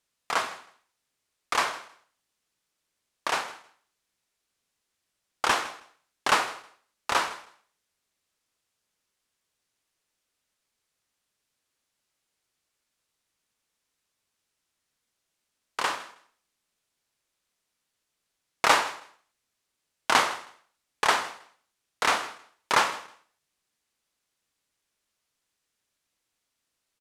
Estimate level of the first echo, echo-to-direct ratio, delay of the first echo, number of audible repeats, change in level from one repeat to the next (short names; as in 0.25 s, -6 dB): -19.0 dB, -19.0 dB, 0.159 s, 2, -14.5 dB